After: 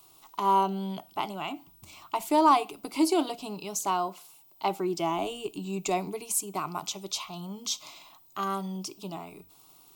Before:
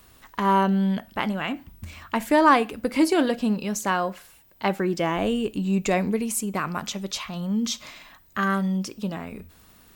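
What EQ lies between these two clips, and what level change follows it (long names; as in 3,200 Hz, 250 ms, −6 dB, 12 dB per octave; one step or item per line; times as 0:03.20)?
low-shelf EQ 130 Hz −11 dB
low-shelf EQ 280 Hz −4.5 dB
phaser with its sweep stopped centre 340 Hz, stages 8
0.0 dB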